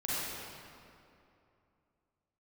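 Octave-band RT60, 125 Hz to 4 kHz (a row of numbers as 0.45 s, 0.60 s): 2.7 s, 2.9 s, 2.8 s, 2.6 s, 2.2 s, 1.7 s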